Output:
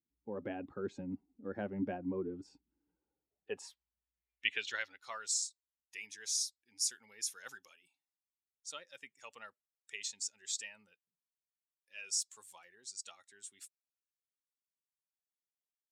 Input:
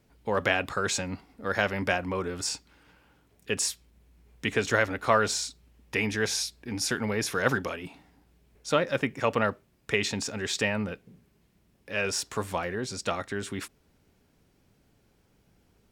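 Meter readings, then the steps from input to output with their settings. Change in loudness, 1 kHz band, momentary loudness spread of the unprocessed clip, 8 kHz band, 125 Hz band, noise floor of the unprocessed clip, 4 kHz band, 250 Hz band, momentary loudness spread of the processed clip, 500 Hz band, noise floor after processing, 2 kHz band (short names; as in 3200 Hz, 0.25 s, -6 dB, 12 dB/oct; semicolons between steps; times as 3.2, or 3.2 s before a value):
-10.5 dB, -20.0 dB, 11 LU, -5.0 dB, under -15 dB, -67 dBFS, -9.5 dB, -11.5 dB, 18 LU, -17.0 dB, under -85 dBFS, -15.5 dB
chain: per-bin expansion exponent 1.5; AGC gain up to 6.5 dB; band-pass sweep 280 Hz -> 7700 Hz, 2.77–5.29; gain -2.5 dB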